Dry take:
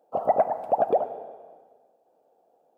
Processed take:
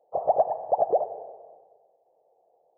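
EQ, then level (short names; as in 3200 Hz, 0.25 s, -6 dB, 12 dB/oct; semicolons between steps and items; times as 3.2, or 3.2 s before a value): brick-wall FIR low-pass 1900 Hz; fixed phaser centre 600 Hz, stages 4; 0.0 dB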